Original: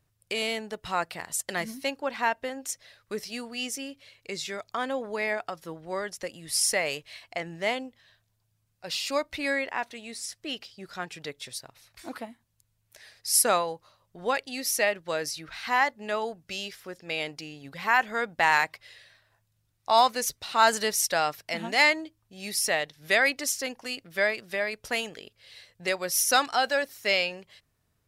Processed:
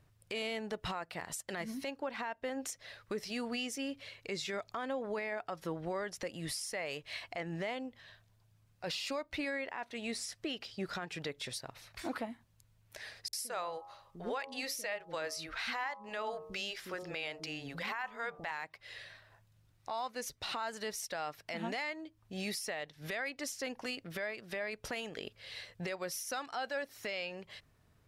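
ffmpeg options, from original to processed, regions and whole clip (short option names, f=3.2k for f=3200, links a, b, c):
-filter_complex "[0:a]asettb=1/sr,asplit=3[a][b][c];[a]atrim=end=13.284[d];[b]atrim=start=13.28:end=18.51,asetpts=PTS-STARTPTS,afade=t=in:d=0.004:c=qsin,afade=t=out:st=5.226:d=0.004:c=qsin,equalizer=f=140:t=o:w=2.9:g=-6.5,bandreject=f=90.94:t=h:w=4,bandreject=f=181.88:t=h:w=4,bandreject=f=272.82:t=h:w=4,bandreject=f=363.76:t=h:w=4,bandreject=f=454.7:t=h:w=4,bandreject=f=545.64:t=h:w=4,bandreject=f=636.58:t=h:w=4,bandreject=f=727.52:t=h:w=4,bandreject=f=818.46:t=h:w=4,bandreject=f=909.4:t=h:w=4,bandreject=f=1.00034k:t=h:w=4,bandreject=f=1.09128k:t=h:w=4,bandreject=f=1.18222k:t=h:w=4,bandreject=f=1.27316k:t=h:w=4,acrossover=split=320[e][f];[f]adelay=50[g];[e][g]amix=inputs=2:normalize=0,atrim=end_sample=230643[h];[c]atrim=start=18.506[i];[d][h]acrossfade=d=0.004:c1=hsin:c2=qsin[j];[j][i]acrossfade=d=0.004:c1=qsin:c2=hsin,acompressor=threshold=-38dB:ratio=12,highshelf=f=4.8k:g=-9.5,alimiter=level_in=10.5dB:limit=-24dB:level=0:latency=1:release=16,volume=-10.5dB,volume=6dB"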